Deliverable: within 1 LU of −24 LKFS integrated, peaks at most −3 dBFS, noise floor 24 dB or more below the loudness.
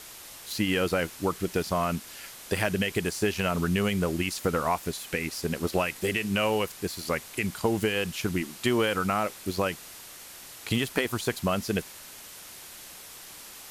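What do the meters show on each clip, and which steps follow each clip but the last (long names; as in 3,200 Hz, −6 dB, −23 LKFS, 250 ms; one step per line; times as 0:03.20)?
background noise floor −46 dBFS; target noise floor −53 dBFS; integrated loudness −28.5 LKFS; sample peak −11.5 dBFS; target loudness −24.0 LKFS
→ broadband denoise 7 dB, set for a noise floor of −46 dBFS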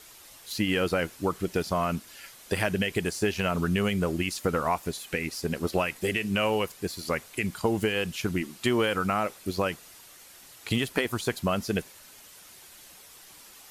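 background noise floor −51 dBFS; target noise floor −53 dBFS
→ broadband denoise 6 dB, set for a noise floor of −51 dBFS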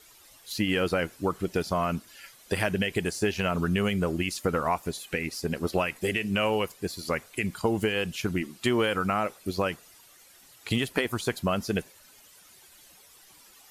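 background noise floor −55 dBFS; integrated loudness −28.5 LKFS; sample peak −12.0 dBFS; target loudness −24.0 LKFS
→ level +4.5 dB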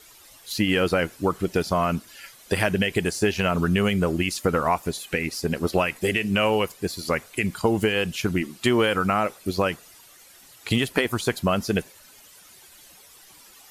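integrated loudness −24.0 LKFS; sample peak −7.5 dBFS; background noise floor −51 dBFS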